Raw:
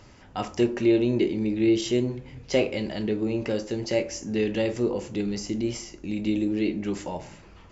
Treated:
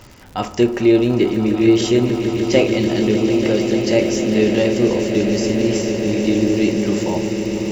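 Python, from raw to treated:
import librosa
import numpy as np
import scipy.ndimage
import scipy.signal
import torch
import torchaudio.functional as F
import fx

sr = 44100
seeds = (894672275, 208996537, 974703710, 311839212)

p1 = fx.dmg_crackle(x, sr, seeds[0], per_s=110.0, level_db=-39.0)
p2 = p1 + fx.echo_swell(p1, sr, ms=148, loudest=8, wet_db=-13.0, dry=0)
y = p2 * 10.0 ** (7.5 / 20.0)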